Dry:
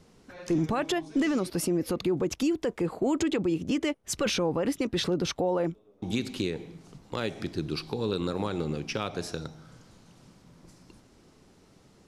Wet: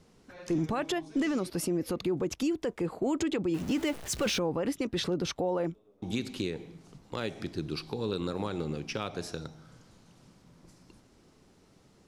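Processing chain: 3.54–4.39 zero-crossing step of -34 dBFS; gain -3 dB

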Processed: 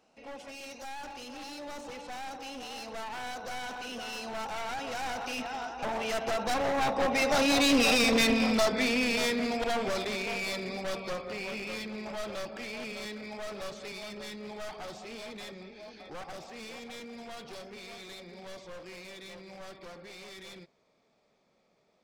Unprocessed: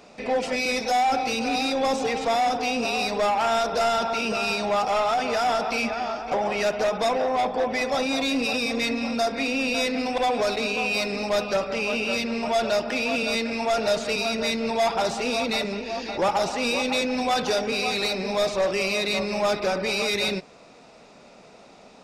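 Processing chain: one-sided fold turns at -24 dBFS; Doppler pass-by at 7.97, 27 m/s, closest 20 m; gain +3 dB

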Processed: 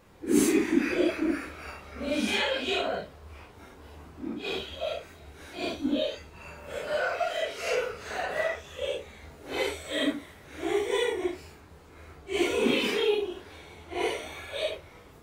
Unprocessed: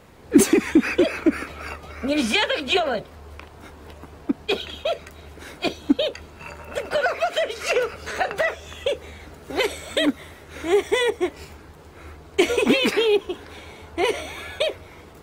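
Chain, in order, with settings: phase scrambler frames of 0.2 s; gain -6.5 dB

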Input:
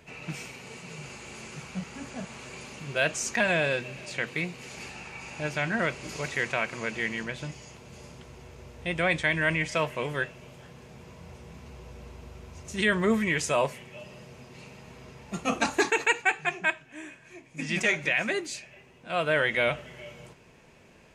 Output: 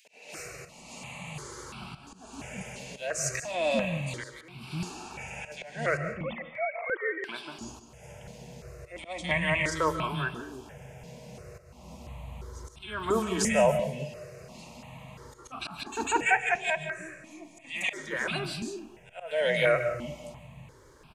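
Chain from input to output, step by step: 5.97–7.24 sine-wave speech; three bands offset in time highs, mids, lows 50/370 ms, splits 290/2200 Hz; auto swell 0.325 s; reverb RT60 0.45 s, pre-delay 0.105 s, DRR 10 dB; step phaser 2.9 Hz 330–1900 Hz; gain +5 dB

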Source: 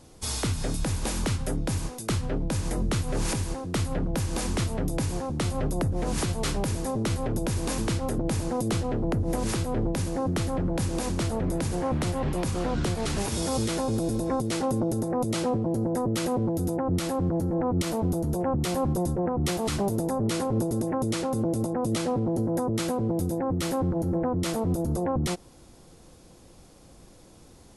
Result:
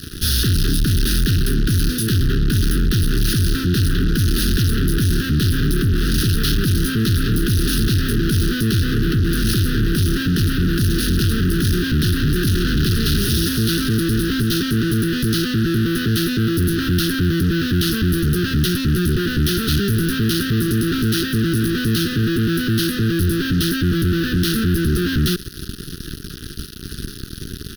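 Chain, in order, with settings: fuzz box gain 49 dB, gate -49 dBFS; elliptic band-stop 420–1500 Hz, stop band 50 dB; fixed phaser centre 2200 Hz, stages 6

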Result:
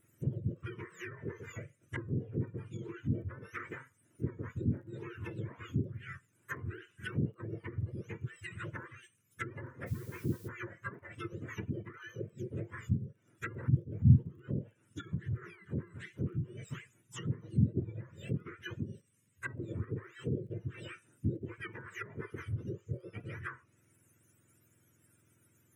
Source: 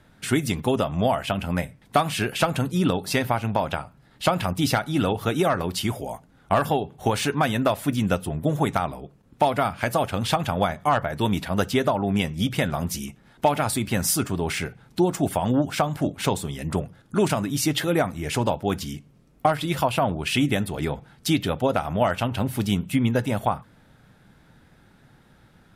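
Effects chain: spectrum mirrored in octaves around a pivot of 1100 Hz; treble ducked by the level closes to 390 Hz, closed at -21 dBFS; high shelf 7500 Hz +6 dB; crackle 19/s -51 dBFS; fixed phaser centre 1900 Hz, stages 4; 9.86–10.47 added noise blue -50 dBFS; gain -8.5 dB

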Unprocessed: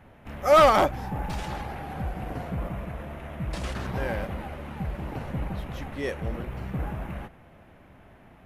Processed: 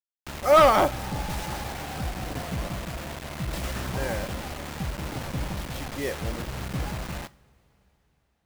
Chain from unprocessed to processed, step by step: requantised 6-bit, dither none; two-slope reverb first 0.41 s, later 4.8 s, from -21 dB, DRR 15.5 dB

